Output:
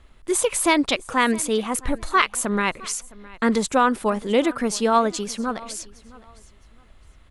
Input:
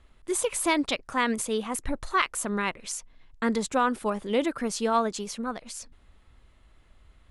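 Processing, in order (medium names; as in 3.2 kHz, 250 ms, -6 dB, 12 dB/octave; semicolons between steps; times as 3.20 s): feedback delay 663 ms, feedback 25%, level -21.5 dB; trim +6 dB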